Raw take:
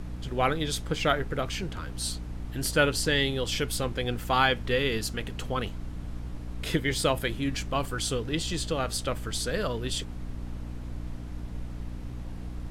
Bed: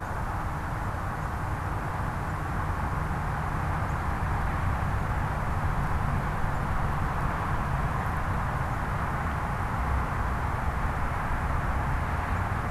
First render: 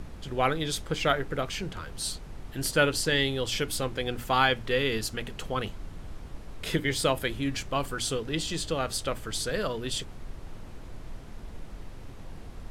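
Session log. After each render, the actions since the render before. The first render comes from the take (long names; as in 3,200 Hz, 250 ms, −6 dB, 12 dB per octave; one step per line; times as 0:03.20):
mains-hum notches 60/120/180/240/300 Hz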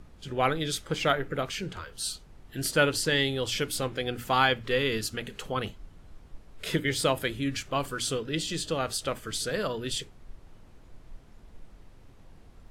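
noise reduction from a noise print 10 dB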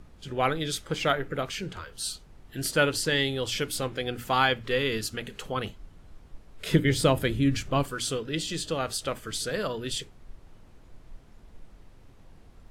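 0:06.71–0:07.83: low-shelf EQ 360 Hz +10 dB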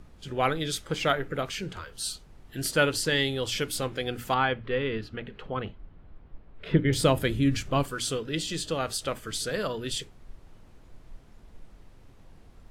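0:04.34–0:06.93: high-frequency loss of the air 380 metres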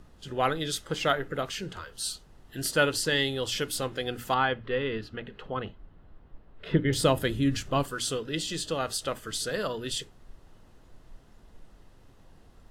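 low-shelf EQ 230 Hz −3.5 dB
notch filter 2,300 Hz, Q 8.4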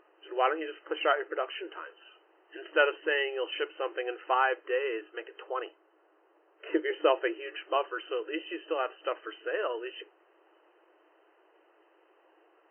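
brick-wall band-pass 310–3,100 Hz
notch filter 2,100 Hz, Q 27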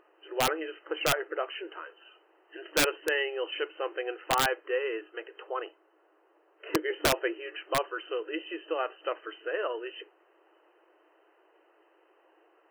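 wrap-around overflow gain 16.5 dB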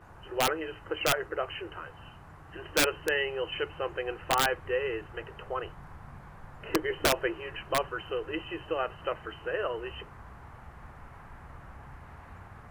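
mix in bed −19.5 dB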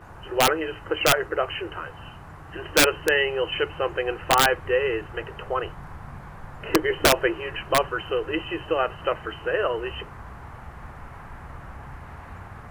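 level +7.5 dB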